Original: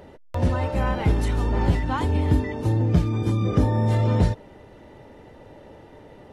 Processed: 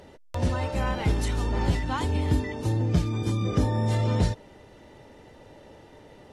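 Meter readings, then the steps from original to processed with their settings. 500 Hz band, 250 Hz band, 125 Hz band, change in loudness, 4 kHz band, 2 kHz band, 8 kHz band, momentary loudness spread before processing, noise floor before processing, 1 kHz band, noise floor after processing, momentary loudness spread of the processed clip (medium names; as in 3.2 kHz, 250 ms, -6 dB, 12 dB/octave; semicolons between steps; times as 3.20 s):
-4.0 dB, -4.0 dB, -4.0 dB, -4.0 dB, +2.0 dB, -1.5 dB, no reading, 4 LU, -48 dBFS, -3.5 dB, -52 dBFS, 4 LU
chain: peaking EQ 6.5 kHz +8.5 dB 2.3 oct; trim -4 dB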